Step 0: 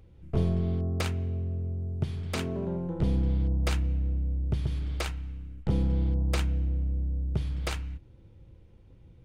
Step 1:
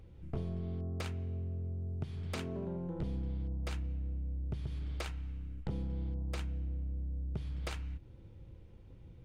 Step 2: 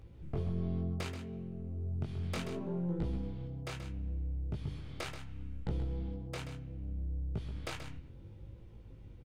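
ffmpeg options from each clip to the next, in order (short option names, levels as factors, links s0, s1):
-af "highshelf=f=8900:g=-4.5,acompressor=threshold=0.0126:ratio=3"
-af "flanger=delay=17.5:depth=5.5:speed=0.69,aecho=1:1:131:0.335,volume=1.68"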